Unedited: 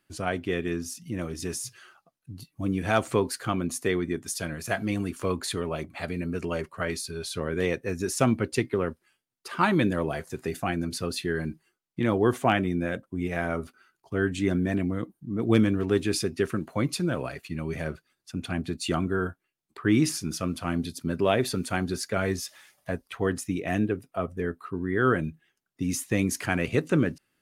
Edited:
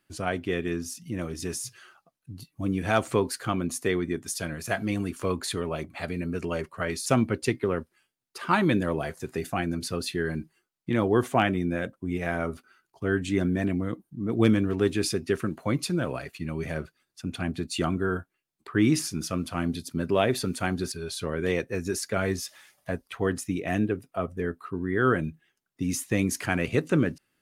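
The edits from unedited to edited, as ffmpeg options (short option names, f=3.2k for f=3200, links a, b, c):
-filter_complex "[0:a]asplit=4[a][b][c][d];[a]atrim=end=7.062[e];[b]atrim=start=8.158:end=22.022[f];[c]atrim=start=7.058:end=8.162[g];[d]atrim=start=22.018[h];[e][f]acrossfade=d=0.004:c1=hsin:c2=hsin[i];[i][g]acrossfade=d=0.004:c1=hsin:c2=hsin[j];[j][h]acrossfade=d=0.004:c1=hsin:c2=hsin"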